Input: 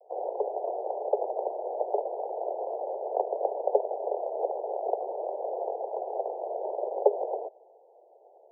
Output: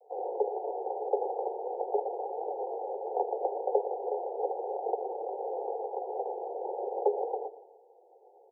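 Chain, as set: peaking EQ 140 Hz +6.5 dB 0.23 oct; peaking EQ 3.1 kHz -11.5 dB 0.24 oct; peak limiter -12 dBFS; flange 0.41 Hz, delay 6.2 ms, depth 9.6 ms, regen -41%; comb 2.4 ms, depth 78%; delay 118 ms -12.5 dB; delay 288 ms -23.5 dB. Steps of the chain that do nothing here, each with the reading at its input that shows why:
peaking EQ 140 Hz: input has nothing below 300 Hz; peaking EQ 3.1 kHz: input has nothing above 1 kHz

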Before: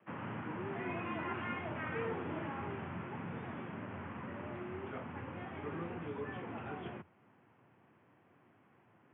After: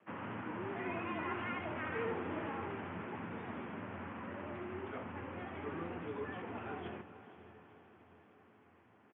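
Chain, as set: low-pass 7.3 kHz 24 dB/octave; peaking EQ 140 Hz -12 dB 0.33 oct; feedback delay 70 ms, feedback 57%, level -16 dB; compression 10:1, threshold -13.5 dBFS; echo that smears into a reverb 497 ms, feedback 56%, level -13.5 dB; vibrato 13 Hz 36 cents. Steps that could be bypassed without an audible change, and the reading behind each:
low-pass 7.3 kHz: input has nothing above 2.9 kHz; compression, threshold -13.5 dBFS: peak at its input -26.0 dBFS

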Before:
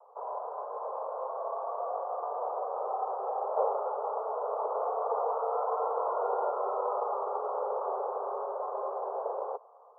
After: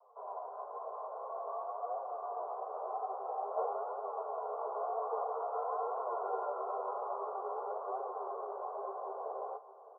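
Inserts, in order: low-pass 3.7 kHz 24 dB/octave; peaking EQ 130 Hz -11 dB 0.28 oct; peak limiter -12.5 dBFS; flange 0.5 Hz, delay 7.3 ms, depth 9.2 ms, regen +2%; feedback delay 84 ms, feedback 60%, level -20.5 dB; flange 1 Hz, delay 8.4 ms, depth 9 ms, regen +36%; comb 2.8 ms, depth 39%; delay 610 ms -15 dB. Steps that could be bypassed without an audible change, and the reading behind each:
low-pass 3.7 kHz: input has nothing above 1.4 kHz; peaking EQ 130 Hz: input has nothing below 360 Hz; peak limiter -12.5 dBFS: peak at its input -16.0 dBFS

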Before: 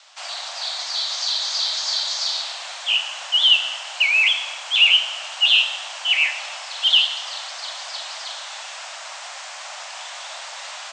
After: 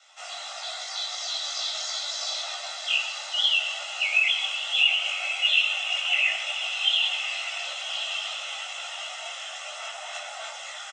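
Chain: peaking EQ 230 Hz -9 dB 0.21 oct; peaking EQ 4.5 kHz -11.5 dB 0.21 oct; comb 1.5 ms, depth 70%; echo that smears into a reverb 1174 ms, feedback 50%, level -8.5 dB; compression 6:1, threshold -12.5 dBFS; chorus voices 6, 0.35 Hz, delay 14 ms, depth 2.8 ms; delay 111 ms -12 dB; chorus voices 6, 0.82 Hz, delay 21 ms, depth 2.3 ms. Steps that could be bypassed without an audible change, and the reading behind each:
peaking EQ 230 Hz: input has nothing below 540 Hz

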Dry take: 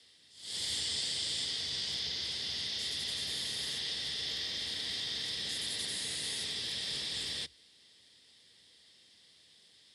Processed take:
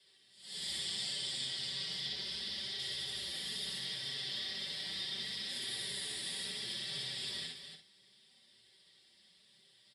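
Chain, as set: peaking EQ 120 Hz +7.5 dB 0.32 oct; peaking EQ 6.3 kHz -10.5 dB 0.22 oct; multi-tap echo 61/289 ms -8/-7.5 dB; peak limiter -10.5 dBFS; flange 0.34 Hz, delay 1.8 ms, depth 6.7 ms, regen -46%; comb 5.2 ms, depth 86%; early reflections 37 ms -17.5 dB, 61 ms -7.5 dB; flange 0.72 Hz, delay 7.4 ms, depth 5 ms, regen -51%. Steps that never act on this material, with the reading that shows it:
peak limiter -10.5 dBFS: peak at its input -21.0 dBFS

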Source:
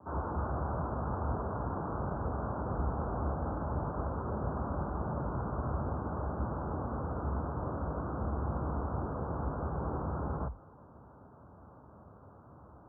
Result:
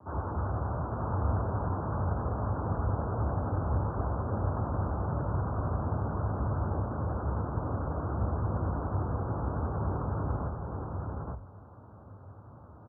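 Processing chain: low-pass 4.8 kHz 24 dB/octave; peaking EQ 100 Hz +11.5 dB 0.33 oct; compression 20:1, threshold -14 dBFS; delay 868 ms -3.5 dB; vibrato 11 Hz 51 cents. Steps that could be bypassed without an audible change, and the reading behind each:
low-pass 4.8 kHz: input has nothing above 1.4 kHz; compression, threshold -14 dBFS: peak at its input -19.5 dBFS

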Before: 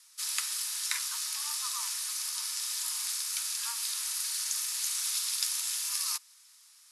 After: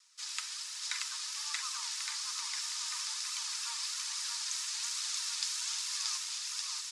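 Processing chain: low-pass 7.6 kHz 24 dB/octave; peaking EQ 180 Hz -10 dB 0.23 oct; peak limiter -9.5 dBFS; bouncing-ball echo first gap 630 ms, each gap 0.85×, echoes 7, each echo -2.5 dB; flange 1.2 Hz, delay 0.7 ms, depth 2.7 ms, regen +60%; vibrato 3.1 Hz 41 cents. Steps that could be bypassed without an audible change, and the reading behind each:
peaking EQ 180 Hz: input has nothing below 810 Hz; peak limiter -9.5 dBFS: peak at its input -12.0 dBFS

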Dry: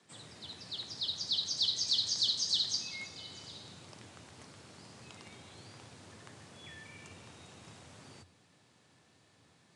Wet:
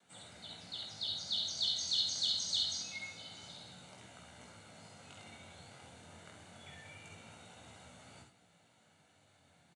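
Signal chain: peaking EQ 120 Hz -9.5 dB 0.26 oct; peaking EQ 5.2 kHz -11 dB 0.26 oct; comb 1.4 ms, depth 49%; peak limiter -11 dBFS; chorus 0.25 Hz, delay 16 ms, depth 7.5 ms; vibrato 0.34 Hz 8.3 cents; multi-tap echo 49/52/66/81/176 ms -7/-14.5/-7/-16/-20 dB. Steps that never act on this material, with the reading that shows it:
peak limiter -11 dBFS: peak at its input -19.0 dBFS

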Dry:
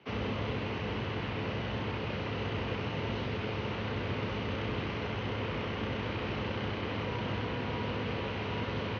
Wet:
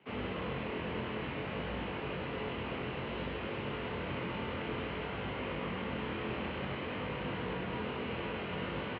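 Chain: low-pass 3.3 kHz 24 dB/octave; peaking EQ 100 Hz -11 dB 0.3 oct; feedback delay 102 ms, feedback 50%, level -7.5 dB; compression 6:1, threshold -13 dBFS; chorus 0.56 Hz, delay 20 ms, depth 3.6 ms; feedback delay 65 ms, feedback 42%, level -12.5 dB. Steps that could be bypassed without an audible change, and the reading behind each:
compression, threshold -13 dBFS: peak at its input -23.0 dBFS

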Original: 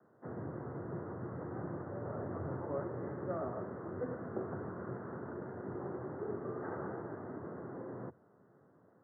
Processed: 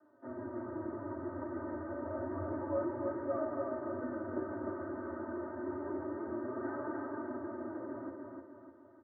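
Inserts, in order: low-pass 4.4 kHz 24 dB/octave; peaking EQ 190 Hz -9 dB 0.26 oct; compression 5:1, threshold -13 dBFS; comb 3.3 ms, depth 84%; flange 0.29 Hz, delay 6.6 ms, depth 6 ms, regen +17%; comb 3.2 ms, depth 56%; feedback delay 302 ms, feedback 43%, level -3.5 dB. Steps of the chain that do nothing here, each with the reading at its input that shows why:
low-pass 4.4 kHz: input has nothing above 1.8 kHz; compression, threshold -13 dBFS: peak at its input -26.5 dBFS

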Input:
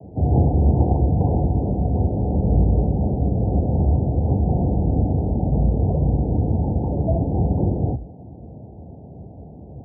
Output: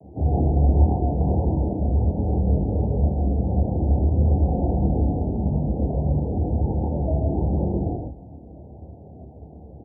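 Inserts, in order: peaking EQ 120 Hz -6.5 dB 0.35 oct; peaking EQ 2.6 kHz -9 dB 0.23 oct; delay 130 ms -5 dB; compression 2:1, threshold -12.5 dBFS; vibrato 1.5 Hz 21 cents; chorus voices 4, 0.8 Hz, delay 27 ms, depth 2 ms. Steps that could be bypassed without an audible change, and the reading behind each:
peaking EQ 2.6 kHz: input has nothing above 810 Hz

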